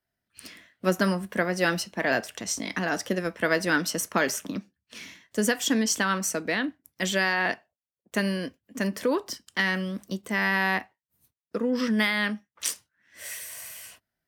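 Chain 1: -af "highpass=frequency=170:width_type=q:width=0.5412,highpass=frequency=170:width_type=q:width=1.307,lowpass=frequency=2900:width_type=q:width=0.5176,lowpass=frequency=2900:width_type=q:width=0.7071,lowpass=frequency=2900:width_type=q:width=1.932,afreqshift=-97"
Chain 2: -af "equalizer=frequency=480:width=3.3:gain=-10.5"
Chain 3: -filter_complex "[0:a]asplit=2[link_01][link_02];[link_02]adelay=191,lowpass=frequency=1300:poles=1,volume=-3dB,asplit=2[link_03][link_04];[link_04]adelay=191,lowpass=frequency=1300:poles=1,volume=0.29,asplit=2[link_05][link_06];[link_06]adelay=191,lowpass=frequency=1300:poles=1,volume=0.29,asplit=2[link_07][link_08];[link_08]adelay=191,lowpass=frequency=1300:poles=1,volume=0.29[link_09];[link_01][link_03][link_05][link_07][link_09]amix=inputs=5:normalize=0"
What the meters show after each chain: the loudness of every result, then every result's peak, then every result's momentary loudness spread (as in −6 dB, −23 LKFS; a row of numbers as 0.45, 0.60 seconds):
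−28.0, −28.0, −26.0 LKFS; −10.5, −9.5, −9.0 dBFS; 17, 16, 15 LU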